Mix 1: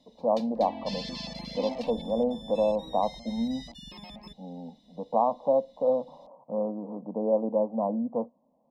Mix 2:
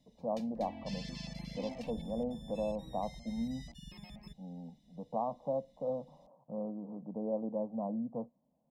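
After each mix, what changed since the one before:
master: add octave-band graphic EQ 125/250/500/1,000/4,000 Hz +5/−7/−8/−11/−12 dB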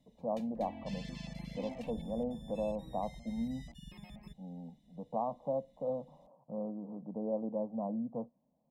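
master: add parametric band 5,100 Hz −8.5 dB 0.67 octaves

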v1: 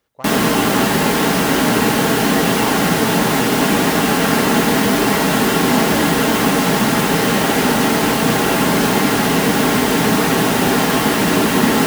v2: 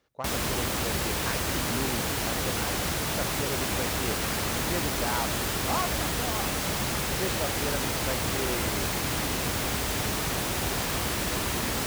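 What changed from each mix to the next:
background −6.0 dB
reverb: off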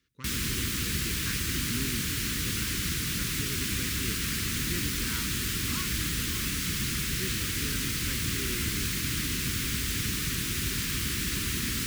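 master: add Butterworth band-reject 700 Hz, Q 0.52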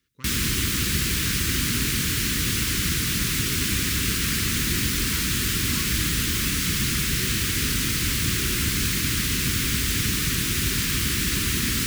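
background +6.5 dB

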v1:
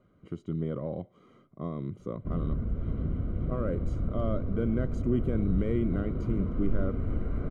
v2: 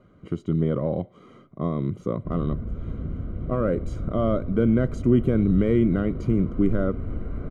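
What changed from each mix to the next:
speech +9.0 dB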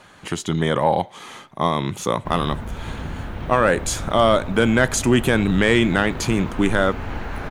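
master: remove moving average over 51 samples

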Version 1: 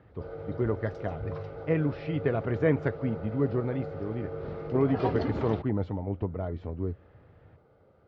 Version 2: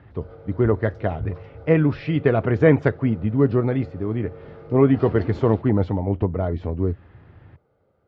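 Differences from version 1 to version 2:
speech +9.5 dB
background −4.5 dB

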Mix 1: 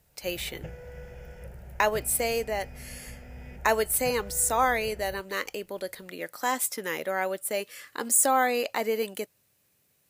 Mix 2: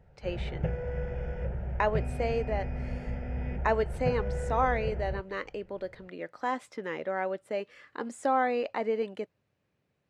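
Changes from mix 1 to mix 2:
background +10.5 dB
master: add head-to-tape spacing loss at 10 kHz 33 dB

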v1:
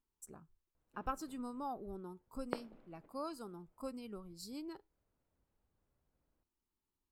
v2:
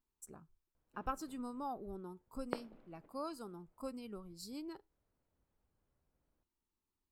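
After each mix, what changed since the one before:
nothing changed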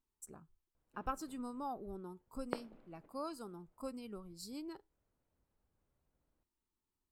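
master: add parametric band 8,400 Hz +2 dB 0.44 octaves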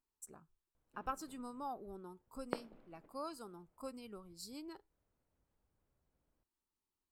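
speech: add low-shelf EQ 340 Hz −6.5 dB

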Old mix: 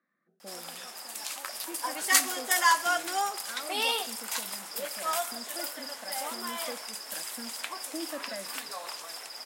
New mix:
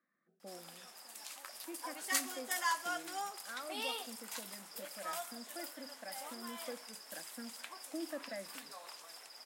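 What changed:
speech −4.0 dB
background −11.5 dB

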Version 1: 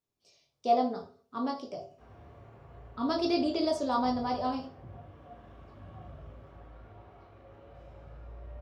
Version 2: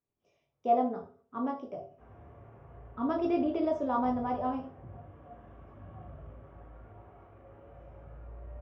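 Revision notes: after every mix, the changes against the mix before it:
speech: add high-frequency loss of the air 78 metres
master: add moving average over 10 samples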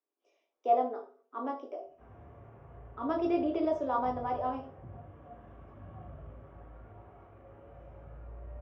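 speech: add Butterworth high-pass 280 Hz 48 dB per octave

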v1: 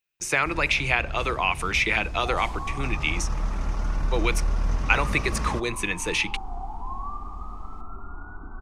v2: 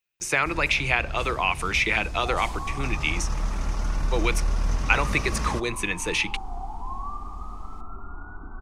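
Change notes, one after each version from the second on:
first sound: add high-shelf EQ 3,700 Hz +8 dB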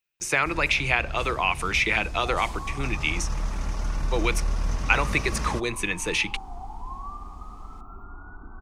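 reverb: off

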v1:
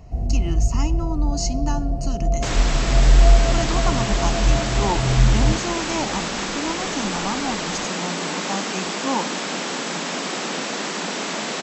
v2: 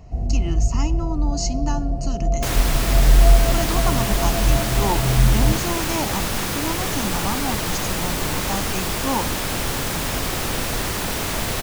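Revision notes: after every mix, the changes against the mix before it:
second sound: remove linear-phase brick-wall band-pass 160–8,000 Hz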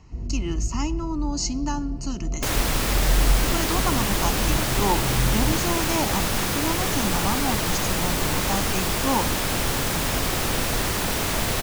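first sound: add transistor ladder low-pass 480 Hz, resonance 35%

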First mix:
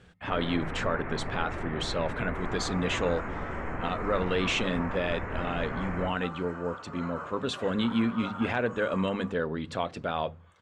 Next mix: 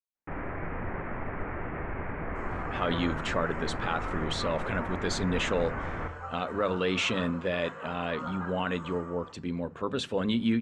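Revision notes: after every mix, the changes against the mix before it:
speech: entry +2.50 s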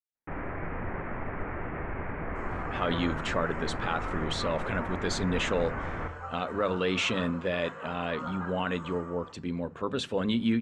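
nothing changed

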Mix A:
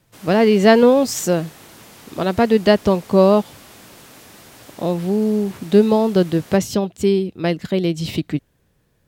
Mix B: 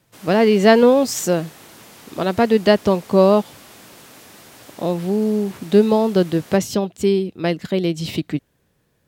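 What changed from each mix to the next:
master: add low-shelf EQ 79 Hz −9 dB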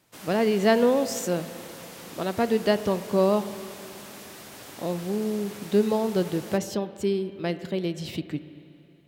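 speech −9.5 dB
reverb: on, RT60 2.9 s

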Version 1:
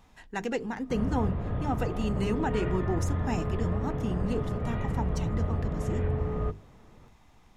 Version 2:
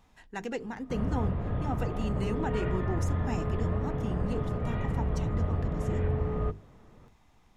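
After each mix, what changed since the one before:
speech −4.0 dB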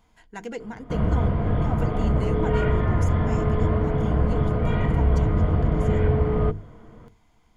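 background +8.5 dB
master: add EQ curve with evenly spaced ripples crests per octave 1.8, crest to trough 7 dB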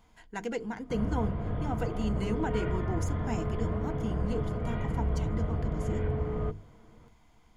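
background −10.0 dB

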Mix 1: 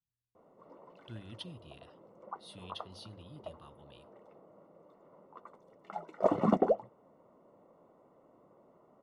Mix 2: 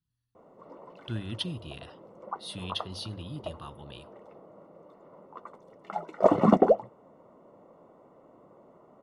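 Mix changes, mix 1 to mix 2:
speech +12.0 dB
background +7.0 dB

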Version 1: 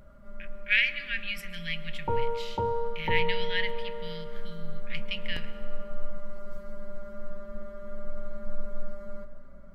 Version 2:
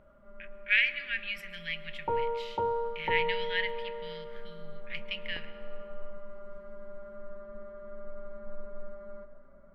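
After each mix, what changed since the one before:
first sound: add low-pass filter 1,300 Hz 6 dB per octave
master: add bass and treble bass −11 dB, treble −10 dB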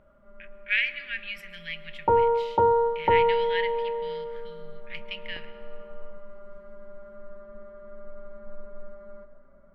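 second sound +10.0 dB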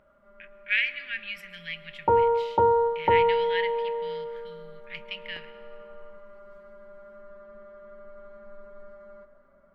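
first sound: add spectral tilt +2 dB per octave

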